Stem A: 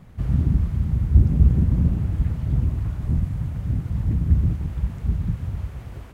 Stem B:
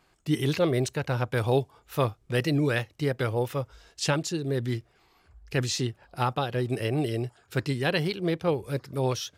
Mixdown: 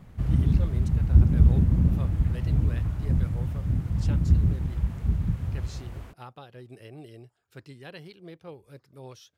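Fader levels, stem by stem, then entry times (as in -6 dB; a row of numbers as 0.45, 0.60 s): -2.0, -17.5 dB; 0.00, 0.00 s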